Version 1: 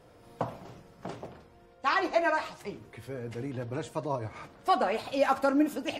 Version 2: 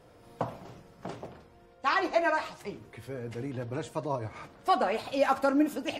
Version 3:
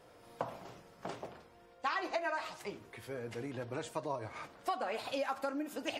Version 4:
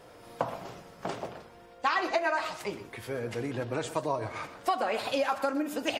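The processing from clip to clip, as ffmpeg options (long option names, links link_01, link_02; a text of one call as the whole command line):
ffmpeg -i in.wav -af anull out.wav
ffmpeg -i in.wav -af "acompressor=threshold=-30dB:ratio=12,lowshelf=frequency=300:gain=-9.5" out.wav
ffmpeg -i in.wav -af "aecho=1:1:124:0.211,volume=7.5dB" out.wav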